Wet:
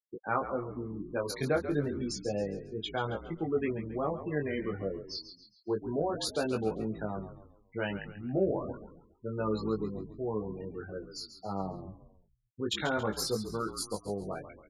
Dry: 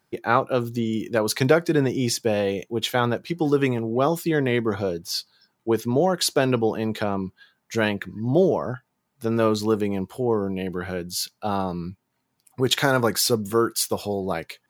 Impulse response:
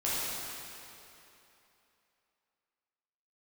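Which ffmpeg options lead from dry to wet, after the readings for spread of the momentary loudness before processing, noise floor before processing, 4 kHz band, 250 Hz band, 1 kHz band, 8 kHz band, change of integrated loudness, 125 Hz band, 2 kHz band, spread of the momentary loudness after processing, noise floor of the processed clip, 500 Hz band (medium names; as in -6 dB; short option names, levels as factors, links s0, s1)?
9 LU, -75 dBFS, -12.0 dB, -11.0 dB, -11.0 dB, -14.0 dB, -11.0 dB, -11.0 dB, -11.5 dB, 10 LU, -68 dBFS, -10.5 dB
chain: -filter_complex "[0:a]afftfilt=real='re*gte(hypot(re,im),0.0794)':imag='im*gte(hypot(re,im),0.0794)':win_size=1024:overlap=0.75,flanger=delay=18.5:depth=2.2:speed=0.3,asplit=2[s0][s1];[s1]asplit=4[s2][s3][s4][s5];[s2]adelay=137,afreqshift=-54,volume=0.282[s6];[s3]adelay=274,afreqshift=-108,volume=0.119[s7];[s4]adelay=411,afreqshift=-162,volume=0.0495[s8];[s5]adelay=548,afreqshift=-216,volume=0.0209[s9];[s6][s7][s8][s9]amix=inputs=4:normalize=0[s10];[s0][s10]amix=inputs=2:normalize=0,volume=0.398"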